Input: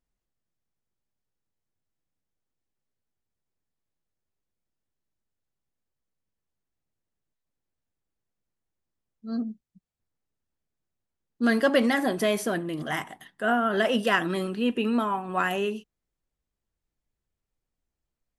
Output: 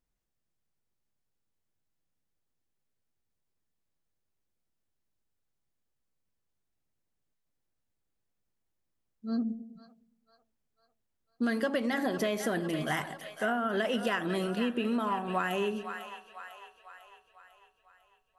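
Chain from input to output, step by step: on a send: two-band feedback delay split 630 Hz, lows 103 ms, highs 499 ms, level -13.5 dB; on the sum: compression 12:1, threshold -26 dBFS, peak gain reduction 11.5 dB; 11.81–12.42 s: peaking EQ 9.5 kHz -4.5 dB -> -15 dB 0.32 oct

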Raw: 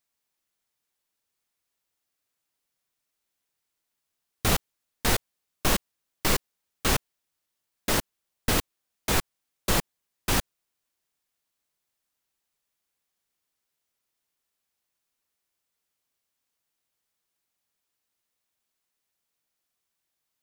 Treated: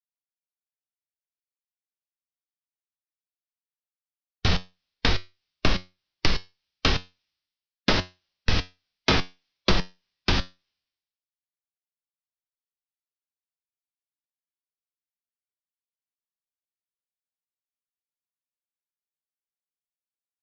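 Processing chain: steep low-pass 5.5 kHz 72 dB/octave; peaking EQ 1.7 kHz +3 dB 2.8 oct; harmonic-percussive split harmonic +7 dB; bass shelf 230 Hz +10 dB; compression 6:1, threshold -26 dBFS, peak gain reduction 17.5 dB; feedback comb 91 Hz, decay 0.29 s, harmonics all, mix 60%; three bands expanded up and down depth 100%; trim +8.5 dB

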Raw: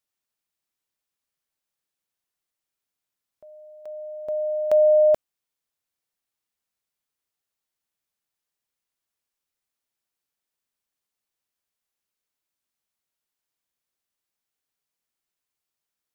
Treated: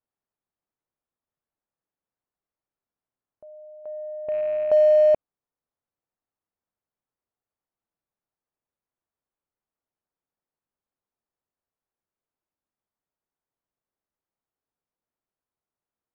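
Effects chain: rattle on loud lows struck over -50 dBFS, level -25 dBFS; low-pass 1.1 kHz 12 dB/octave; in parallel at -11.5 dB: saturation -28.5 dBFS, distortion -5 dB

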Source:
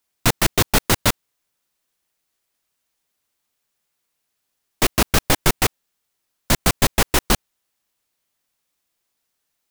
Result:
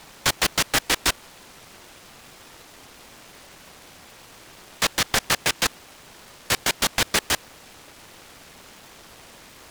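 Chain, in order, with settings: steep high-pass 1.5 kHz 96 dB/octave; in parallel at -4 dB: word length cut 6-bit, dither triangular; on the sum: distance through air 93 m; delay time shaken by noise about 1.2 kHz, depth 0.12 ms

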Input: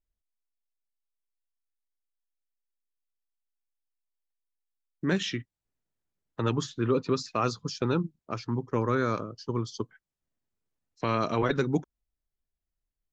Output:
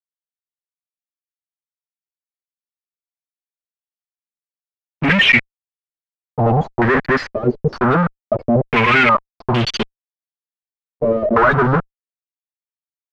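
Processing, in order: expander on every frequency bin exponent 3; bass shelf 130 Hz +5.5 dB; comb 4.9 ms, depth 82%; waveshaping leveller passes 5; upward compressor, threshold -36 dBFS; fuzz box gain 47 dB, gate -56 dBFS; step-sequenced low-pass 2.2 Hz 440–3100 Hz; trim -1.5 dB

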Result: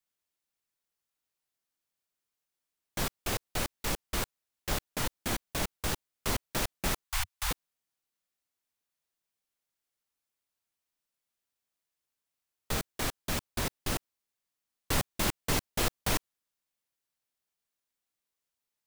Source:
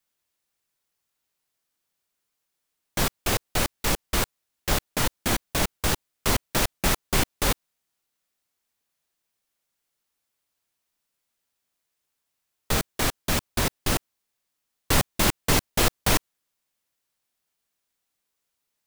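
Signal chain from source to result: 7.04–7.51 s: inverse Chebyshev band-stop 170–440 Hz, stop band 50 dB; trim -8 dB

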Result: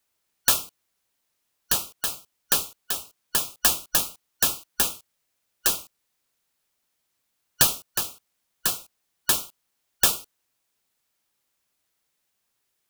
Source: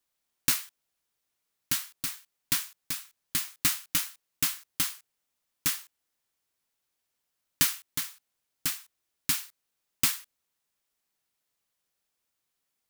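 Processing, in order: four frequency bands reordered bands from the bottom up 3142; trim +5.5 dB

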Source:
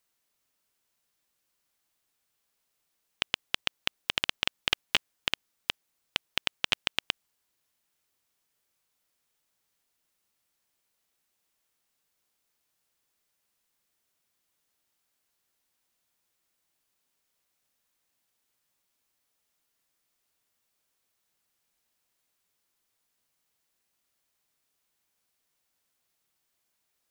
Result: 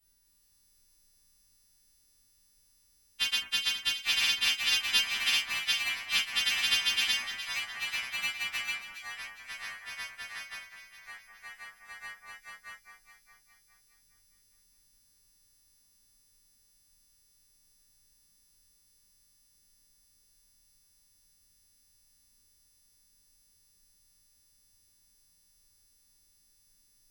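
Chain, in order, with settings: partials quantised in pitch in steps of 2 st; peaking EQ 500 Hz -13 dB 1.1 oct; added noise brown -76 dBFS; ever faster or slower copies 246 ms, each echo -3 st, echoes 3, each echo -6 dB; on a send: echo whose repeats swap between lows and highs 206 ms, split 2.1 kHz, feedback 66%, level -7.5 dB; on the sum: gated-style reverb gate 90 ms falling, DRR -5 dB; trim -8.5 dB

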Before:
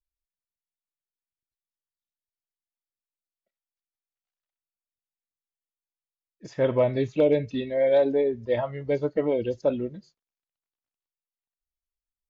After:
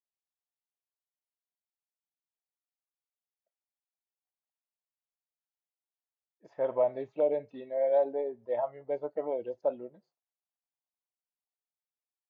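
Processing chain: band-pass filter 750 Hz, Q 2.6

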